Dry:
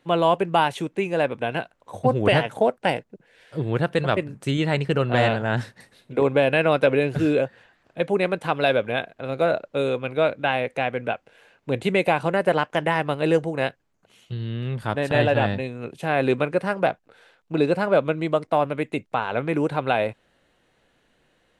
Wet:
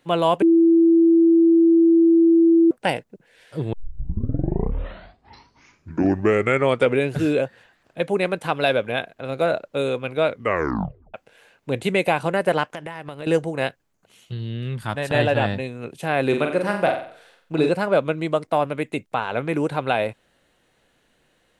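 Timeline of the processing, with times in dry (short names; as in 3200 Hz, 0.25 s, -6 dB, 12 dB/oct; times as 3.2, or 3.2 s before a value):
0.42–2.71 bleep 332 Hz -11 dBFS
3.73 tape start 3.39 s
10.28 tape stop 0.86 s
12.67–13.27 compressor 5:1, threshold -30 dBFS
14.39–15.08 bell 1800 Hz -> 280 Hz -9 dB
16.28–17.69 flutter echo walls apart 7.7 m, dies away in 0.5 s
whole clip: high shelf 6000 Hz +7.5 dB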